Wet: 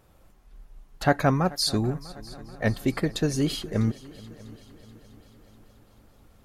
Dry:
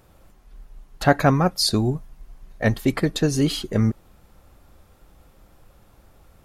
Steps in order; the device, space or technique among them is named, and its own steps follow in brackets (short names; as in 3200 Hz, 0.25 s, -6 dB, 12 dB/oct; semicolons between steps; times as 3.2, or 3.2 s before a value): multi-head tape echo (multi-head echo 0.216 s, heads second and third, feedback 55%, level -21.5 dB; wow and flutter 21 cents); gain -4.5 dB